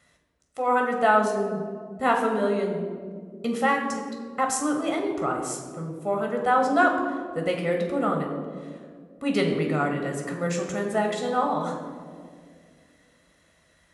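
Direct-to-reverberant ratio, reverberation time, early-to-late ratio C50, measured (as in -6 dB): 1.5 dB, 2.1 s, 5.0 dB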